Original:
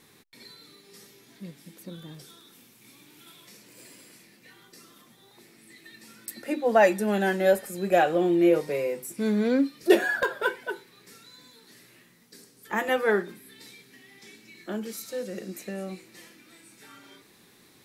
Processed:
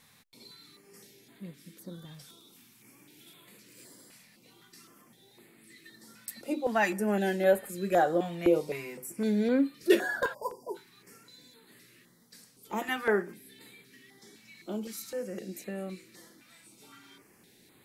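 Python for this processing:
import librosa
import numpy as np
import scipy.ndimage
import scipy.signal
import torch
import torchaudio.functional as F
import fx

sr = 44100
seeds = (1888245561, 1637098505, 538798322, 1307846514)

y = fx.brickwall_bandstop(x, sr, low_hz=1100.0, high_hz=4600.0, at=(10.33, 10.74), fade=0.02)
y = fx.filter_held_notch(y, sr, hz=3.9, low_hz=360.0, high_hz=5600.0)
y = F.gain(torch.from_numpy(y), -2.5).numpy()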